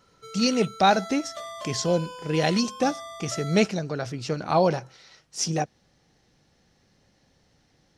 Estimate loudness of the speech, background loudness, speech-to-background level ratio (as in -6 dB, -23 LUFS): -25.5 LUFS, -38.5 LUFS, 13.0 dB